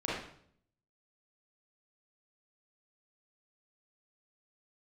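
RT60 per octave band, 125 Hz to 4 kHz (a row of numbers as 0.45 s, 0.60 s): 0.90 s, 0.75 s, 0.65 s, 0.60 s, 0.55 s, 0.55 s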